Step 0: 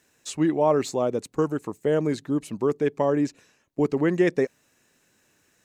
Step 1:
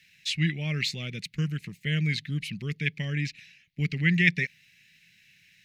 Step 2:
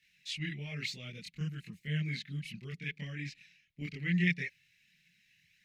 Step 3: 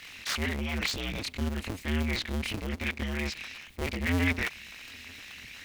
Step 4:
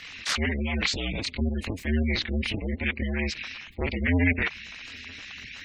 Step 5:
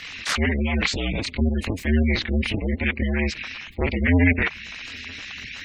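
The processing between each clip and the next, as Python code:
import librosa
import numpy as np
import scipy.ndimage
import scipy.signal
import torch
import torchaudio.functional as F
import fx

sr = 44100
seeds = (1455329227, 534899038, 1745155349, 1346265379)

y1 = fx.curve_eq(x, sr, hz=(100.0, 170.0, 270.0, 1000.0, 2100.0, 4600.0, 7600.0, 11000.0), db=(0, 7, -15, -30, 15, 8, -8, -2))
y2 = fx.chorus_voices(y1, sr, voices=4, hz=0.62, base_ms=25, depth_ms=3.2, mix_pct=60)
y2 = y2 * librosa.db_to_amplitude(-6.5)
y3 = fx.cycle_switch(y2, sr, every=2, mode='inverted')
y3 = fx.env_flatten(y3, sr, amount_pct=50)
y3 = y3 * librosa.db_to_amplitude(1.5)
y4 = fx.spec_gate(y3, sr, threshold_db=-20, keep='strong')
y4 = y4 * librosa.db_to_amplitude(4.5)
y5 = fx.dynamic_eq(y4, sr, hz=4600.0, q=0.78, threshold_db=-41.0, ratio=4.0, max_db=-5)
y5 = y5 * librosa.db_to_amplitude(5.5)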